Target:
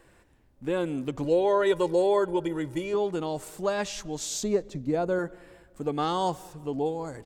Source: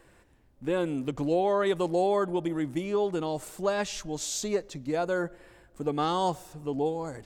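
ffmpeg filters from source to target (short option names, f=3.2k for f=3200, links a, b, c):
-filter_complex "[0:a]asettb=1/sr,asplit=3[a][b][c];[a]atrim=end=1.244[d];[b]atrim=start=1.24:end=2.94,asetpts=PTS-STARTPTS,afade=t=in:d=0.004:c=qsin,afade=t=out:st=1.696:d=0.004:c=qsin,aecho=1:1:2.1:0.73,atrim=end_sample=74970[e];[c]atrim=start=2.936[f];[d][e]acrossfade=d=0.004:c1=hsin:c2=qsin[g];[g][f]acrossfade=d=0.004:c1=qsin:c2=hsin,asettb=1/sr,asplit=3[h][i][j];[h]atrim=end=4.434[k];[i]atrim=start=4.43:end=5.19,asetpts=PTS-STARTPTS,afade=t=in:d=0.004:c=qsin,afade=t=out:st=0.756:d=0.004:c=qsin,tiltshelf=f=740:g=5.5[l];[j]atrim=start=5.186[m];[k][l]acrossfade=d=0.004:c1=hsin:c2=qsin[n];[n][m]acrossfade=d=0.004:c1=qsin:c2=hsin,asplit=2[o][p];[p]adelay=193,lowpass=f=3.4k:p=1,volume=-24dB,asplit=2[q][r];[r]adelay=193,lowpass=f=3.4k:p=1,volume=0.46,asplit=2[s][t];[t]adelay=193,lowpass=f=3.4k:p=1,volume=0.46[u];[q][s][u]amix=inputs=3:normalize=0[v];[o][v]amix=inputs=2:normalize=0"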